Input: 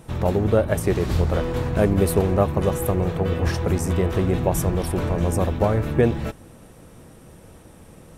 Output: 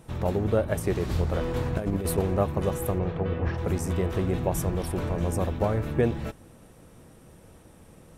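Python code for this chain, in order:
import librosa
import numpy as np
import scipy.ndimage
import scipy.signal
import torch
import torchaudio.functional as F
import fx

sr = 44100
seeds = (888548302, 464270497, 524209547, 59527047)

y = fx.over_compress(x, sr, threshold_db=-20.0, ratio=-0.5, at=(1.41, 2.18))
y = fx.lowpass(y, sr, hz=fx.line((2.98, 4000.0), (3.57, 2100.0)), slope=12, at=(2.98, 3.57), fade=0.02)
y = y * librosa.db_to_amplitude(-5.5)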